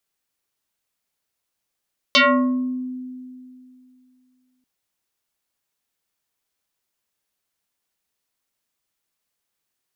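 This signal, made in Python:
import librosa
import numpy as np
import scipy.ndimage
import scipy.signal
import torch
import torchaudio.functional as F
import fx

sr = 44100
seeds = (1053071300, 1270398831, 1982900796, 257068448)

y = fx.fm2(sr, length_s=2.49, level_db=-10.0, carrier_hz=254.0, ratio=3.27, index=5.8, index_s=0.73, decay_s=2.62, shape='exponential')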